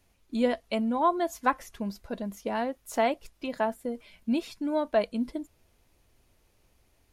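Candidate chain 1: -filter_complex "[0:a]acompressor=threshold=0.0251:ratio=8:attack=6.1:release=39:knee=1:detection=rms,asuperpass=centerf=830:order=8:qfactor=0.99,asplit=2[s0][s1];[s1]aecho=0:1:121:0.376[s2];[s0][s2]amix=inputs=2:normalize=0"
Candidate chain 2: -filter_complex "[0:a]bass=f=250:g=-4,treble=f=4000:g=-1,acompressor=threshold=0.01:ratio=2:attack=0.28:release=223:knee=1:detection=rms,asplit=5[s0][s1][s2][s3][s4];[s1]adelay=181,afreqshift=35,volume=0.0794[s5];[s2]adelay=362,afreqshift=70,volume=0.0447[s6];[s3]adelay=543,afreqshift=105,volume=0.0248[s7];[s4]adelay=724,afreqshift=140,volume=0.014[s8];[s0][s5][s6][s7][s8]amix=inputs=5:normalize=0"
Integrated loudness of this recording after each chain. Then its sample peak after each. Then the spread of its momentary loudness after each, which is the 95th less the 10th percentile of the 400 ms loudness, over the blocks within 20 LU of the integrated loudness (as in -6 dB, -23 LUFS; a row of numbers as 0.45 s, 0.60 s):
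-41.0 LUFS, -41.0 LUFS; -26.0 dBFS, -25.0 dBFS; 15 LU, 8 LU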